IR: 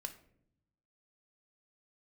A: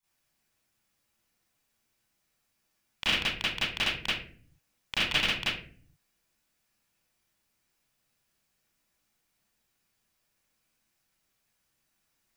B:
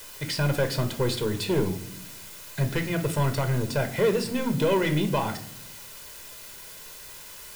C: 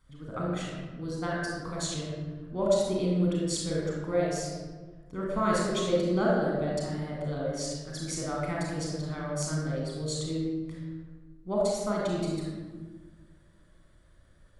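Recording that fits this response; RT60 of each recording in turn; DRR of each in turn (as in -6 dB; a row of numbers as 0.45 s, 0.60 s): B; 0.45 s, 0.70 s, 1.4 s; -13.5 dB, 6.5 dB, -4.0 dB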